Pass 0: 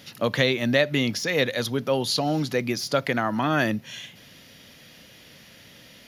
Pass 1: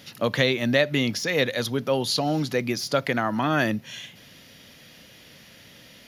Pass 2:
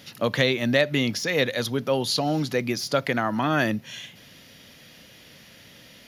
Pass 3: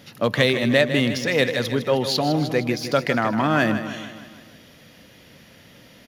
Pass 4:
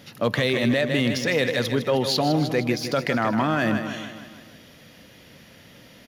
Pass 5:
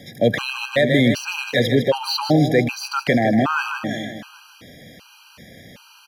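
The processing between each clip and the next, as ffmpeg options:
-af anull
-af "asoftclip=type=hard:threshold=-7.5dB"
-filter_complex "[0:a]asplit=2[a][b];[b]adynamicsmooth=sensitivity=4:basefreq=2.1k,volume=-1dB[c];[a][c]amix=inputs=2:normalize=0,aecho=1:1:156|312|468|624|780|936:0.299|0.161|0.0871|0.047|0.0254|0.0137,volume=-2.5dB"
-af "alimiter=limit=-12dB:level=0:latency=1:release=13"
-filter_complex "[0:a]acrossover=split=360|1000|3700[a][b][c][d];[d]asoftclip=type=tanh:threshold=-32dB[e];[a][b][c][e]amix=inputs=4:normalize=0,afftfilt=real='re*gt(sin(2*PI*1.3*pts/sr)*(1-2*mod(floor(b*sr/1024/800),2)),0)':imag='im*gt(sin(2*PI*1.3*pts/sr)*(1-2*mod(floor(b*sr/1024/800),2)),0)':win_size=1024:overlap=0.75,volume=7dB"

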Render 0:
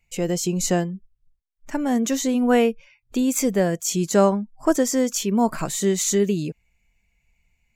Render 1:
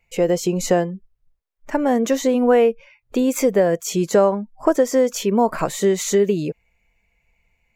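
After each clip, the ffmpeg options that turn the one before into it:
-af "equalizer=f=500:t=o:w=1:g=10,equalizer=f=1k:t=o:w=1:g=5,equalizer=f=2k:t=o:w=1:g=4,equalizer=f=8k:t=o:w=1:g=-4,acompressor=threshold=-13dB:ratio=3"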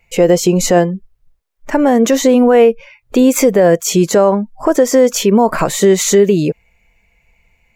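-af "alimiter=level_in=10.5dB:limit=-1dB:release=50:level=0:latency=1,volume=-1dB"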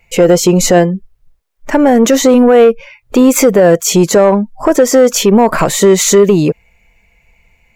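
-af "asoftclip=type=tanh:threshold=-4.5dB,volume=4.5dB"

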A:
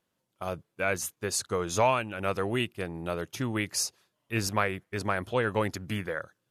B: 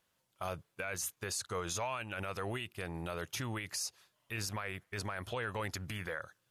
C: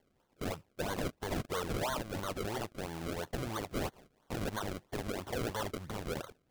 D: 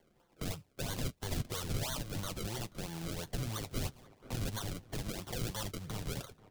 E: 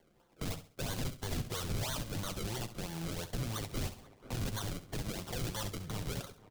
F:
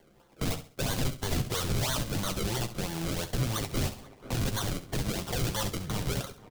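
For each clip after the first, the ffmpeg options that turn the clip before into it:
-af "equalizer=f=270:w=0.57:g=-9.5,acompressor=threshold=-35dB:ratio=3,alimiter=level_in=8dB:limit=-24dB:level=0:latency=1:release=21,volume=-8dB,volume=4dB"
-af "lowshelf=f=300:g=-10,acrusher=samples=34:mix=1:aa=0.000001:lfo=1:lforange=34:lforate=3,asoftclip=type=tanh:threshold=-34dB,volume=6dB"
-filter_complex "[0:a]flanger=delay=5.7:depth=2.4:regen=-47:speed=0.37:shape=sinusoidal,asplit=2[a][b];[b]adelay=484,volume=-23dB,highshelf=f=4k:g=-10.9[c];[a][c]amix=inputs=2:normalize=0,acrossover=split=180|3000[d][e][f];[e]acompressor=threshold=-56dB:ratio=2.5[g];[d][g][f]amix=inputs=3:normalize=0,volume=8dB"
-af "aecho=1:1:67|134|201:0.224|0.0672|0.0201,asoftclip=type=hard:threshold=-31dB,volume=1dB"
-filter_complex "[0:a]asplit=2[a][b];[b]adelay=15,volume=-11dB[c];[a][c]amix=inputs=2:normalize=0,volume=7dB"

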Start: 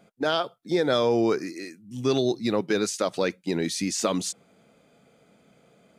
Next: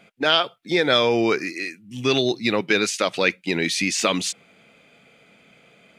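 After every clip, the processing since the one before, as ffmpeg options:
-af "equalizer=f=2.5k:t=o:w=1.3:g=14,volume=1.5dB"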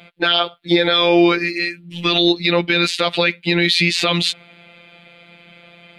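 -af "afftfilt=real='hypot(re,im)*cos(PI*b)':imag='0':win_size=1024:overlap=0.75,highshelf=f=4.9k:t=q:w=3:g=-7,alimiter=level_in=11.5dB:limit=-1dB:release=50:level=0:latency=1,volume=-1dB"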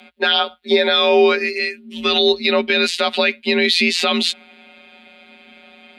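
-af "afreqshift=54"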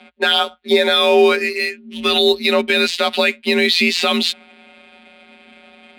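-af "adynamicsmooth=sensitivity=8:basefreq=3.1k,volume=1dB"

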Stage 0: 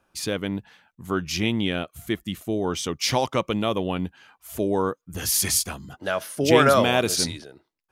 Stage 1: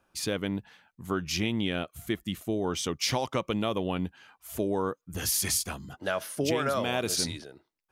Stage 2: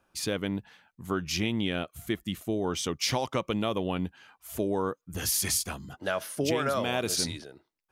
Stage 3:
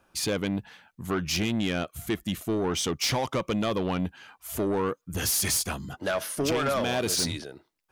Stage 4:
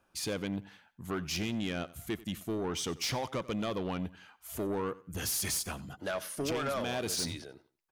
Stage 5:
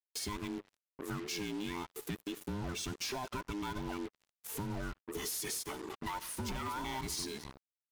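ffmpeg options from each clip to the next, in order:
-af "acompressor=threshold=-21dB:ratio=12,volume=-2.5dB"
-af anull
-af "asoftclip=type=tanh:threshold=-26.5dB,volume=5.5dB"
-af "aecho=1:1:91|182:0.106|0.0307,volume=-7dB"
-af "afftfilt=real='real(if(between(b,1,1008),(2*floor((b-1)/24)+1)*24-b,b),0)':imag='imag(if(between(b,1,1008),(2*floor((b-1)/24)+1)*24-b,b),0)*if(between(b,1,1008),-1,1)':win_size=2048:overlap=0.75,acrusher=bits=6:mix=0:aa=0.5,acompressor=threshold=-42dB:ratio=3,volume=3dB"

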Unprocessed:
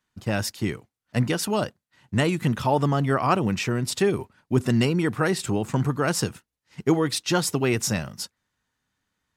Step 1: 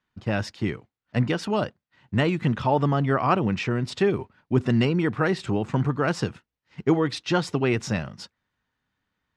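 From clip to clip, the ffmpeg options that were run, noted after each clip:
-af "lowpass=3.7k"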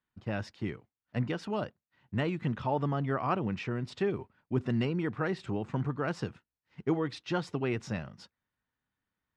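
-af "highshelf=f=5.1k:g=-8,volume=-8.5dB"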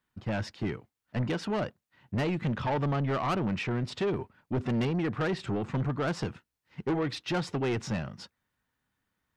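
-af "asoftclip=type=tanh:threshold=-31dB,volume=6.5dB"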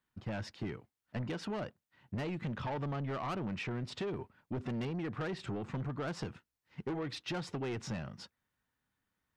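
-af "acompressor=threshold=-31dB:ratio=6,volume=-4dB"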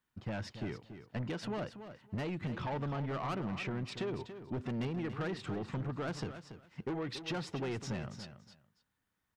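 -af "aecho=1:1:283|566:0.282|0.0507"

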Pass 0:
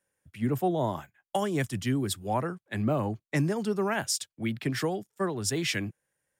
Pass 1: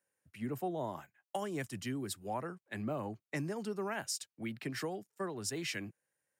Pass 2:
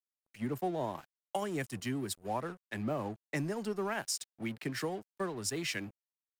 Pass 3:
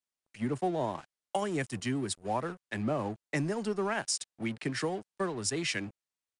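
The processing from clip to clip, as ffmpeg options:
-af "highpass=f=180:p=1,acompressor=threshold=-35dB:ratio=1.5,bandreject=f=3.4k:w=11,volume=-5dB"
-af "aeval=exprs='sgn(val(0))*max(abs(val(0))-0.00188,0)':c=same,volume=3.5dB"
-af "aresample=22050,aresample=44100,volume=3.5dB"

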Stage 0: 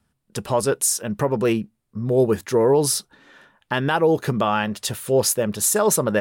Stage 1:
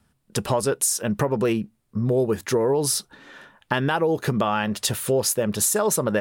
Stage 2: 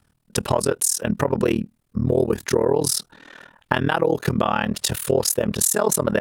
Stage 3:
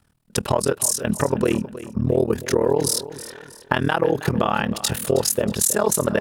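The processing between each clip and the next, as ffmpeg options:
-af "acompressor=threshold=-24dB:ratio=4,volume=4.5dB"
-af "tremolo=f=39:d=0.974,volume=5.5dB"
-af "aecho=1:1:318|636|954:0.178|0.0676|0.0257"

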